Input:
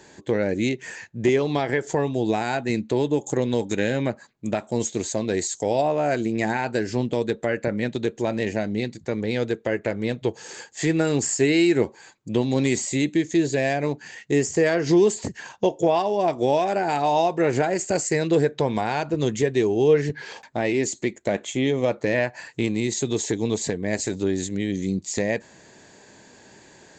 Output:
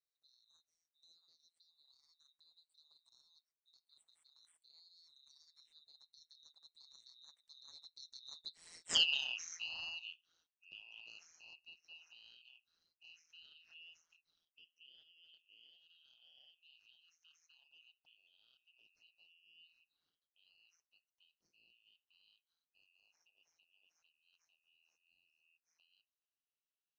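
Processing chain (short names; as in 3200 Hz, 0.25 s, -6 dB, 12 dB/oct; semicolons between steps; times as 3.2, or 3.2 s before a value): four-band scrambler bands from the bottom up 3412; Doppler pass-by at 8.95, 60 m/s, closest 4.5 m; ring modulator 83 Hz; gain -4.5 dB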